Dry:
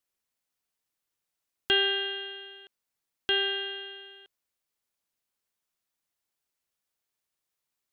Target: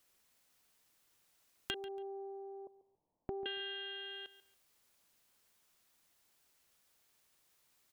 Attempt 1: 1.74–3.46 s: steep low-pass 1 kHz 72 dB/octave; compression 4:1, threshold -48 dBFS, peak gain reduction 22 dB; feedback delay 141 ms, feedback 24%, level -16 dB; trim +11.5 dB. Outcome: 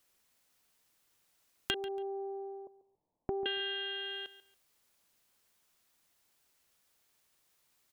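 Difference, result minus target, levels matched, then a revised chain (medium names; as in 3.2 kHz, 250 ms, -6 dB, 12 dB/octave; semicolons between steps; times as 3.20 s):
compression: peak gain reduction -6 dB
1.74–3.46 s: steep low-pass 1 kHz 72 dB/octave; compression 4:1, threshold -56 dBFS, peak gain reduction 28 dB; feedback delay 141 ms, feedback 24%, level -16 dB; trim +11.5 dB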